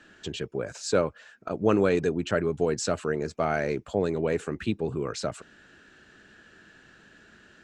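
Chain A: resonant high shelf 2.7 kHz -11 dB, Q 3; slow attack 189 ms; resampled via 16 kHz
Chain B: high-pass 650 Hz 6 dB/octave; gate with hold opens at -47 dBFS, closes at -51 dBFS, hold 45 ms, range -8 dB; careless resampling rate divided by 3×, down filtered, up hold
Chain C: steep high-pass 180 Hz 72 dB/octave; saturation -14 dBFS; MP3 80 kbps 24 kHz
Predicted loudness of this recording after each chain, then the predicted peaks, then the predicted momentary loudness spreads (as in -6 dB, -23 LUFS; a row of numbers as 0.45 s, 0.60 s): -30.0 LUFS, -32.5 LUFS, -29.5 LUFS; -10.0 dBFS, -13.5 dBFS, -15.5 dBFS; 23 LU, 10 LU, 10 LU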